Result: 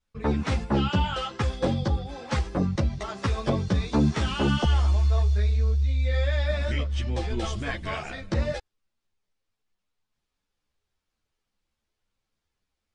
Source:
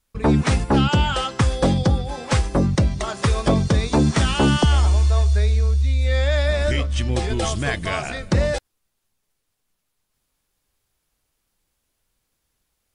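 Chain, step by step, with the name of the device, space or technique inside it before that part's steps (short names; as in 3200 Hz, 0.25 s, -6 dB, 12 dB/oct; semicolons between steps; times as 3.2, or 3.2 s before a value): string-machine ensemble chorus (ensemble effect; LPF 5500 Hz 12 dB/oct); gain -4 dB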